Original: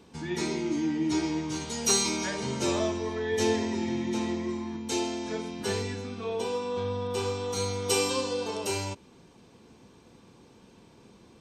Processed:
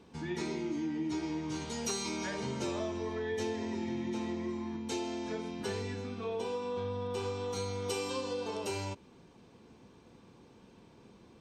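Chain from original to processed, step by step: treble shelf 5.3 kHz -8 dB; compression 4:1, threshold -30 dBFS, peak gain reduction 8 dB; trim -2.5 dB

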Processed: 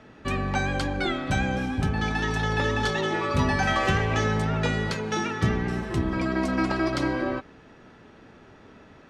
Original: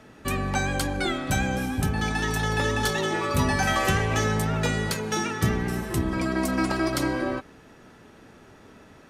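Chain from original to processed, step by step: low-pass 4.6 kHz 12 dB/octave

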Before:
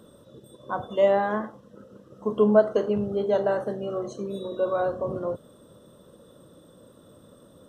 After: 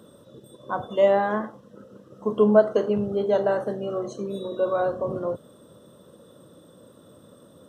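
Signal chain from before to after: high-pass 83 Hz; trim +1.5 dB

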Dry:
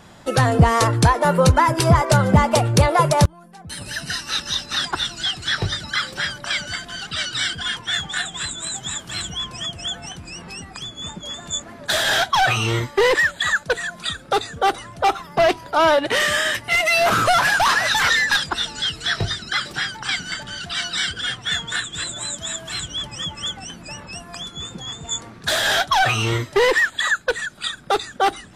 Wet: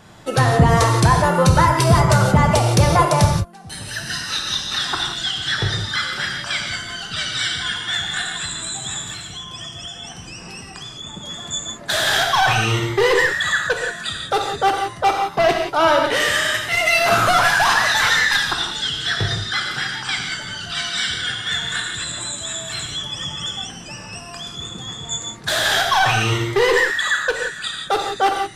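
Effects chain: 9.10–11.13 s: compression, threshold -31 dBFS, peak gain reduction 7.5 dB; gated-style reverb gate 200 ms flat, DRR 1.5 dB; trim -1 dB

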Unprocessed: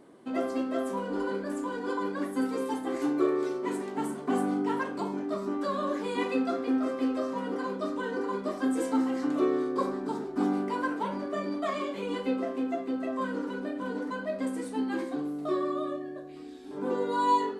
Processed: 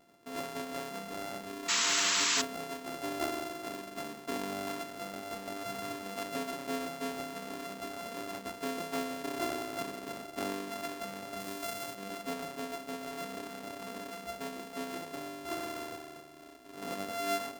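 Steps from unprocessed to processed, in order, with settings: sorted samples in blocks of 64 samples; 1.68–2.42 s: painted sound noise 870–7900 Hz -20 dBFS; 11.40–11.95 s: treble shelf 4.8 kHz +7.5 dB; trim -9 dB

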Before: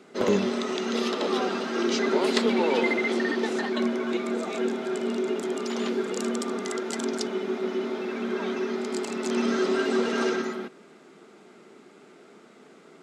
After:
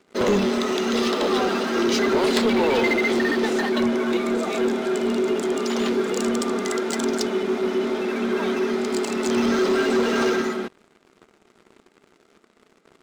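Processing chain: waveshaping leveller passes 3; trim -5 dB

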